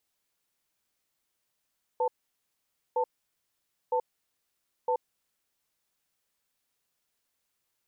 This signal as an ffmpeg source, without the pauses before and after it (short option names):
-f lavfi -i "aevalsrc='0.0473*(sin(2*PI*498*t)+sin(2*PI*890*t))*clip(min(mod(t,0.96),0.08-mod(t,0.96))/0.005,0,1)':d=3.11:s=44100"